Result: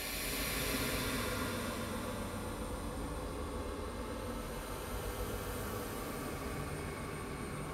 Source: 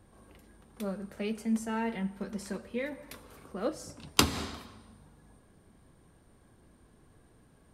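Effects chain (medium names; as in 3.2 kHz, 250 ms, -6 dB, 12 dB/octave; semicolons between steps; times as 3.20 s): slow attack 484 ms; Paulstretch 23×, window 0.10 s, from 3.10 s; delay with an opening low-pass 133 ms, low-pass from 200 Hz, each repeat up 2 oct, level 0 dB; trim +9 dB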